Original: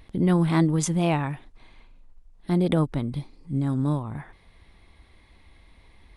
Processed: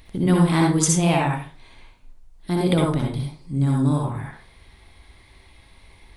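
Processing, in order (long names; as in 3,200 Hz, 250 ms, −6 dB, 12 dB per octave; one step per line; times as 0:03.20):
high-shelf EQ 2,900 Hz +8.5 dB
convolution reverb RT60 0.35 s, pre-delay 52 ms, DRR −1.5 dB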